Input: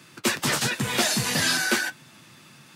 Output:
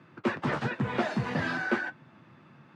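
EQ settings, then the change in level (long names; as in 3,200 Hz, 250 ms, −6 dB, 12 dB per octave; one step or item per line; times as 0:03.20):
low-pass filter 1,400 Hz 12 dB per octave
−1.5 dB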